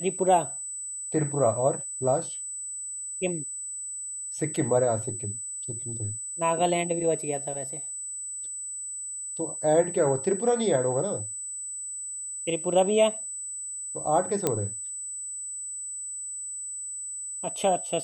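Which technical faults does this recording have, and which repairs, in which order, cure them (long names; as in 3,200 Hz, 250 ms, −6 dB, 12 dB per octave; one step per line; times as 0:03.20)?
whistle 8,000 Hz −33 dBFS
0:14.47: click −9 dBFS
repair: click removal
notch filter 8,000 Hz, Q 30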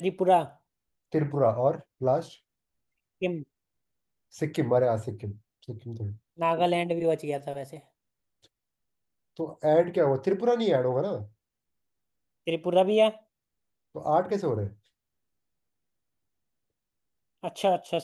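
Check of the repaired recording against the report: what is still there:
none of them is left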